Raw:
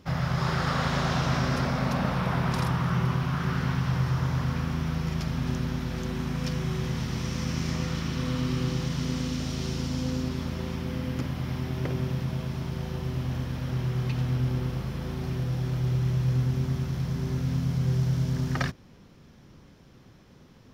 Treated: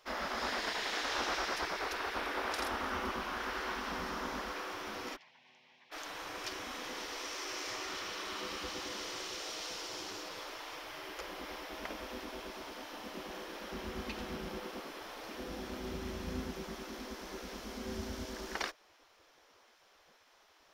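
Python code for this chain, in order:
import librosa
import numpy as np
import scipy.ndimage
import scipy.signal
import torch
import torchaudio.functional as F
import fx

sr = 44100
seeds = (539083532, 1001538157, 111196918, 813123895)

y = fx.ladder_bandpass(x, sr, hz=1500.0, resonance_pct=65, at=(5.15, 5.91), fade=0.02)
y = fx.spec_gate(y, sr, threshold_db=-15, keep='weak')
y = y * librosa.db_to_amplitude(-2.0)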